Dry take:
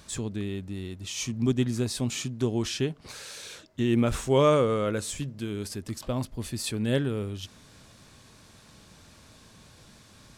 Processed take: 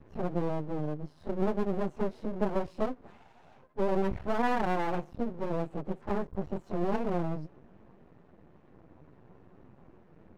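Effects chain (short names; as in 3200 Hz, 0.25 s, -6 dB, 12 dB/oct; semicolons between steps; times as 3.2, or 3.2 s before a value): pitch shift by moving bins +8.5 st; Bessel low-pass 930 Hz, order 2; compressor 3:1, threshold -31 dBFS, peak gain reduction 8.5 dB; half-wave rectifier; mismatched tape noise reduction decoder only; gain +8 dB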